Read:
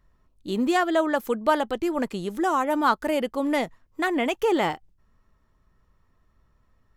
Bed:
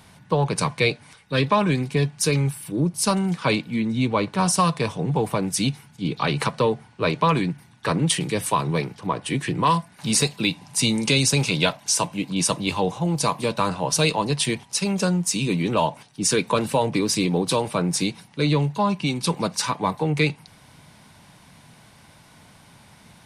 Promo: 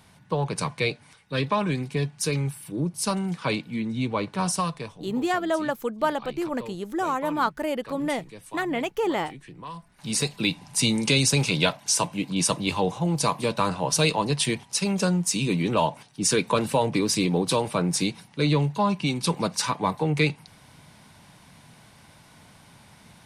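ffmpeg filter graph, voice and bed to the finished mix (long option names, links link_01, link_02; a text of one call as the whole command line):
ffmpeg -i stem1.wav -i stem2.wav -filter_complex "[0:a]adelay=4550,volume=-3dB[link_01];[1:a]volume=13dB,afade=type=out:start_time=4.49:duration=0.53:silence=0.188365,afade=type=in:start_time=9.73:duration=0.78:silence=0.125893[link_02];[link_01][link_02]amix=inputs=2:normalize=0" out.wav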